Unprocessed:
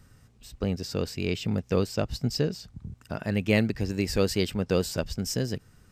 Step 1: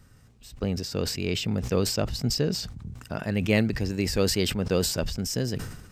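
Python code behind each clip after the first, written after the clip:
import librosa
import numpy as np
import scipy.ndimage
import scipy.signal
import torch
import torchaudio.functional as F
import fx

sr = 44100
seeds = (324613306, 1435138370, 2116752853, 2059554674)

y = fx.sustainer(x, sr, db_per_s=60.0)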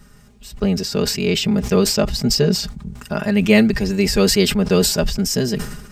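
y = x + 0.83 * np.pad(x, (int(4.9 * sr / 1000.0), 0))[:len(x)]
y = F.gain(torch.from_numpy(y), 7.0).numpy()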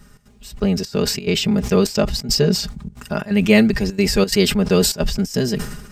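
y = fx.step_gate(x, sr, bpm=177, pattern='xx.xxxxxxx.x', floor_db=-12.0, edge_ms=4.5)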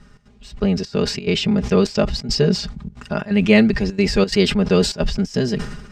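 y = scipy.signal.sosfilt(scipy.signal.butter(2, 5000.0, 'lowpass', fs=sr, output='sos'), x)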